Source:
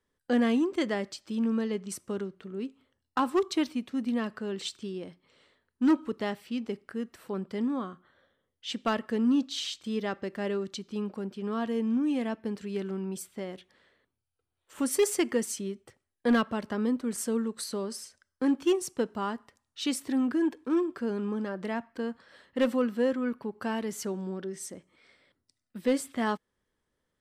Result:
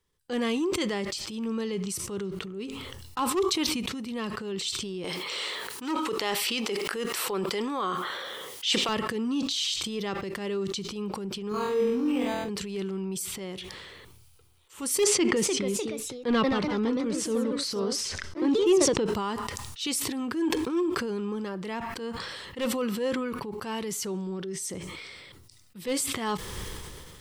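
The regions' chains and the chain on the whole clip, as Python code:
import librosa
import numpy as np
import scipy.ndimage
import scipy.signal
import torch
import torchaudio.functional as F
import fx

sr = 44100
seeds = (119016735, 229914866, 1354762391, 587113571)

y = fx.chain(x, sr, fx.highpass(hz=440.0, slope=12),
    fx.env_flatten(amount_pct=70), at=(5.04, 8.89))
y = fx.chain(y, sr, fx.room_flutter(wall_m=4.1, rt60_s=0.77),
    fx.resample_linear(factor=8), at=(11.49, 12.49))
y = fx.chain(y, sr, fx.lowpass(hz=4800.0, slope=12),
    fx.peak_eq(hz=280.0, db=4.0, octaves=2.1),
    fx.echo_pitch(ms=316, semitones=2, count=2, db_per_echo=-6.0), at=(15.04, 19.06))
y = fx.graphic_eq_15(y, sr, hz=(250, 630, 1600), db=(-12, -11, -9))
y = fx.transient(y, sr, attack_db=-6, sustain_db=0)
y = fx.sustainer(y, sr, db_per_s=25.0)
y = y * 10.0 ** (7.0 / 20.0)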